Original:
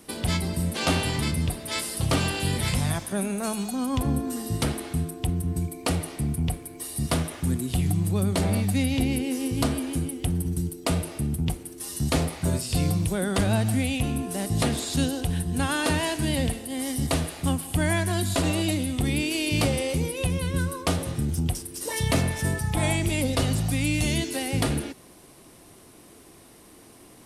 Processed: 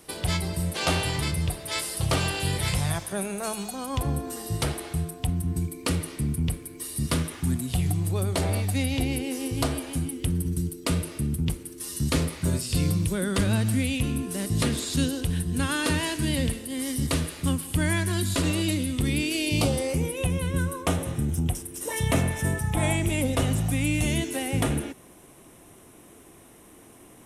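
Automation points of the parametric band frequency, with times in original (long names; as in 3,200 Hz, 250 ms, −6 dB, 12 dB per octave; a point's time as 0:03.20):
parametric band −12.5 dB 0.4 octaves
0:05.03 240 Hz
0:05.71 730 Hz
0:07.29 730 Hz
0:07.94 210 Hz
0:09.78 210 Hz
0:10.19 740 Hz
0:19.26 740 Hz
0:20.04 4,600 Hz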